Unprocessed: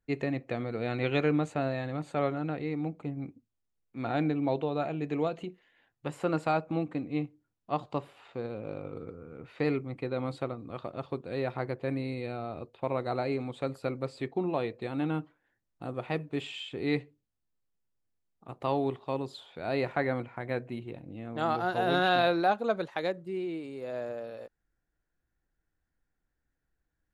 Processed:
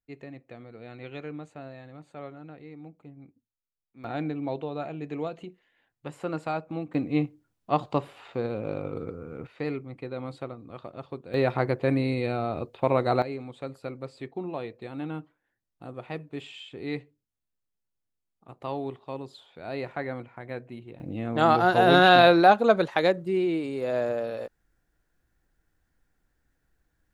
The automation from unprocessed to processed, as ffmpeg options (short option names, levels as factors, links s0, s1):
-af "asetnsamples=n=441:p=0,asendcmd='4.04 volume volume -2.5dB;6.94 volume volume 6.5dB;9.47 volume volume -2.5dB;11.34 volume volume 8dB;13.22 volume volume -3.5dB;21 volume volume 9dB',volume=0.266"